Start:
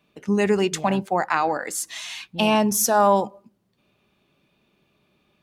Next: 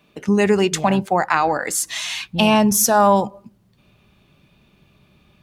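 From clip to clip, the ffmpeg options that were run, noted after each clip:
-filter_complex "[0:a]asubboost=boost=3.5:cutoff=170,asplit=2[s0][s1];[s1]acompressor=threshold=0.0398:ratio=6,volume=1[s2];[s0][s2]amix=inputs=2:normalize=0,volume=1.26"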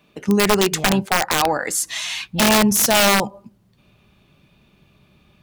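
-af "aeval=exprs='(mod(2.66*val(0)+1,2)-1)/2.66':c=same"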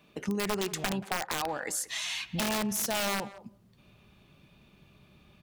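-filter_complex "[0:a]acompressor=threshold=0.0355:ratio=3,asplit=2[s0][s1];[s1]adelay=180,highpass=300,lowpass=3400,asoftclip=type=hard:threshold=0.0501,volume=0.158[s2];[s0][s2]amix=inputs=2:normalize=0,volume=0.668"

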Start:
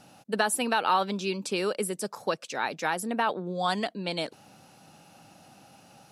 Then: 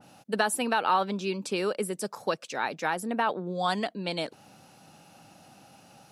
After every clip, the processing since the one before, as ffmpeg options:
-af "adynamicequalizer=threshold=0.00794:dfrequency=2600:dqfactor=0.7:tfrequency=2600:tqfactor=0.7:attack=5:release=100:ratio=0.375:range=3:mode=cutabove:tftype=highshelf"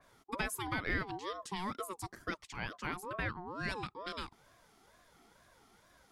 -af "aeval=exprs='val(0)*sin(2*PI*710*n/s+710*0.25/2.2*sin(2*PI*2.2*n/s))':c=same,volume=0.422"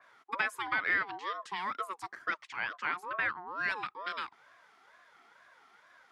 -af "bandpass=f=1600:t=q:w=1.2:csg=0,volume=2.66"

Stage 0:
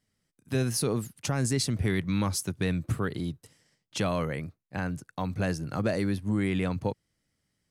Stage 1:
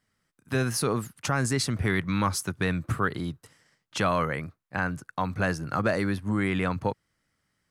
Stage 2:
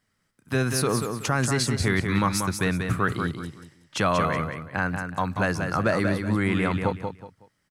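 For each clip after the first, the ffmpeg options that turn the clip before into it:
-af "equalizer=f=1300:t=o:w=1.4:g=10"
-af "aecho=1:1:186|372|558:0.501|0.135|0.0365,volume=1.26"

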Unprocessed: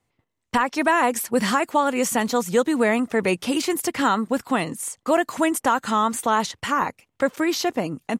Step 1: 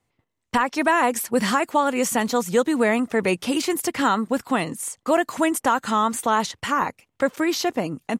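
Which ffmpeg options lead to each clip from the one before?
-af anull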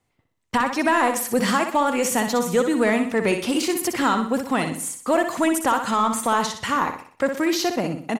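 -filter_complex "[0:a]asplit=2[s0][s1];[s1]asoftclip=type=tanh:threshold=0.0891,volume=0.501[s2];[s0][s2]amix=inputs=2:normalize=0,aecho=1:1:62|124|186|248|310:0.422|0.177|0.0744|0.0312|0.0131,volume=0.75"

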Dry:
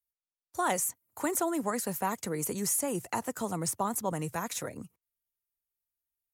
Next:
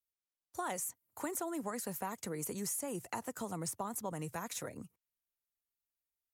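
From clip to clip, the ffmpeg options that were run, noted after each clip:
-af "acompressor=threshold=0.0251:ratio=2.5,volume=0.596"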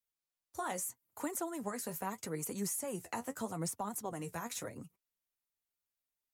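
-af "flanger=delay=3.5:depth=9.8:regen=41:speed=0.79:shape=triangular,volume=1.58"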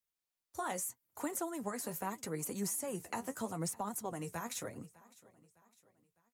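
-af "aecho=1:1:606|1212|1818:0.0794|0.0373|0.0175"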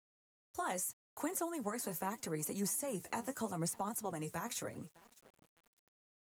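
-af "aeval=exprs='val(0)*gte(abs(val(0)),0.00106)':c=same"

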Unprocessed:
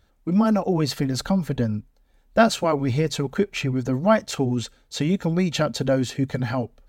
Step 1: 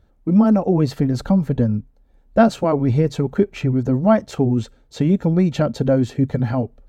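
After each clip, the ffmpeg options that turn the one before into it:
-af "tiltshelf=f=1200:g=7,volume=0.891"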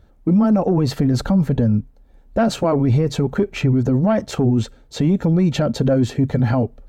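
-af "asoftclip=type=tanh:threshold=0.531,alimiter=limit=0.178:level=0:latency=1:release=25,volume=1.88"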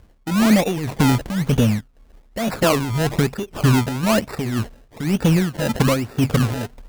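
-af "aresample=11025,acrusher=bits=4:mode=log:mix=0:aa=0.000001,aresample=44100,tremolo=f=1.9:d=0.72,acrusher=samples=27:mix=1:aa=0.000001:lfo=1:lforange=27:lforate=1.1,volume=1.26"

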